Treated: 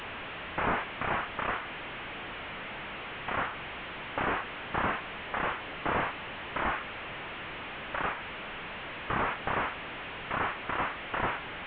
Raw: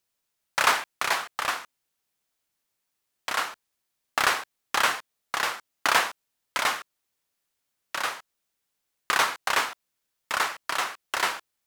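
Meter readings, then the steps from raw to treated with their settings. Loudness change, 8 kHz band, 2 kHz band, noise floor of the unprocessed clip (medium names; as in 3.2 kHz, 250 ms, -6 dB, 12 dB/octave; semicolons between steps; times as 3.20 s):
-7.0 dB, under -40 dB, -5.5 dB, -80 dBFS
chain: one-bit delta coder 16 kbps, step -33 dBFS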